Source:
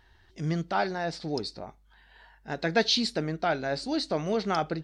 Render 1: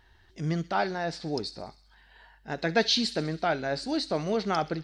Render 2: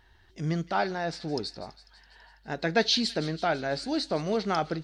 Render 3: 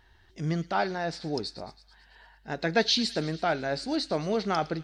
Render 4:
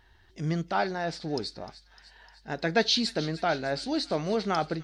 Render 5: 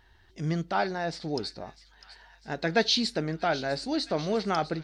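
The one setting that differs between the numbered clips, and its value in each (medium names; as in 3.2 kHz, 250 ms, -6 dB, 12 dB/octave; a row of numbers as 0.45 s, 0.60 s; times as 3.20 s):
feedback echo behind a high-pass, time: 65 ms, 165 ms, 110 ms, 303 ms, 651 ms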